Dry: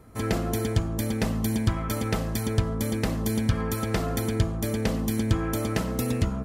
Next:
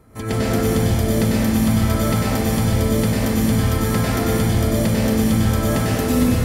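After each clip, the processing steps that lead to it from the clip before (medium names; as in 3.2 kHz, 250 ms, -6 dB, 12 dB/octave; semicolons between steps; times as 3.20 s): plate-style reverb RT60 2.6 s, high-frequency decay 0.85×, pre-delay 85 ms, DRR -8 dB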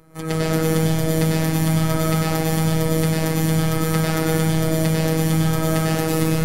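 robot voice 160 Hz; trim +2 dB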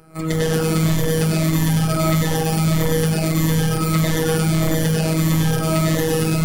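drifting ripple filter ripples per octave 1.1, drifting -1.6 Hz, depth 9 dB; in parallel at -4 dB: wavefolder -18.5 dBFS; on the sum: trim -1 dB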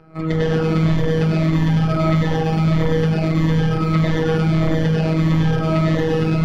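distance through air 240 m; trim +1.5 dB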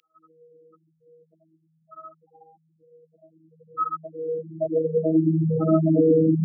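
spectral gate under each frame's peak -10 dB strong; high-pass sweep 2.9 kHz -> 260 Hz, 3.09–5.39 s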